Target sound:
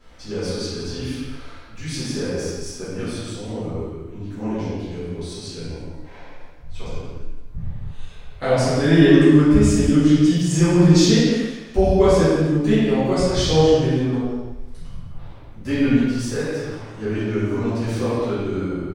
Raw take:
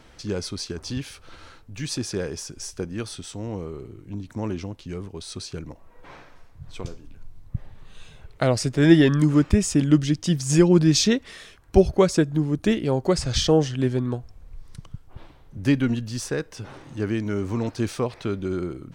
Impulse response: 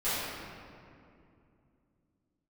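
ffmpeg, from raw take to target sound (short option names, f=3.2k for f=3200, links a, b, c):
-filter_complex "[0:a]asettb=1/sr,asplit=3[a][b][c];[a]atrim=end=4.464[d];[b]atrim=start=4.46:end=6.71,asetpts=PTS-STARTPTS,afade=t=in:d=0.004:c=qsin,afade=t=out:st=2.246:d=0.004:c=qsin,equalizer=f=1.2k:t=o:w=0.25:g=-11.5[e];[c]atrim=start=6.706[f];[d][e]acrossfade=d=0.004:c1=hsin:c2=qsin[g];[g][f]acrossfade=d=0.004:c1=qsin:c2=hsin,aecho=1:1:171|342|513|684:0.188|0.0753|0.0301|0.0121[h];[1:a]atrim=start_sample=2205,afade=t=out:st=0.42:d=0.01,atrim=end_sample=18963[i];[h][i]afir=irnorm=-1:irlink=0,volume=-6dB"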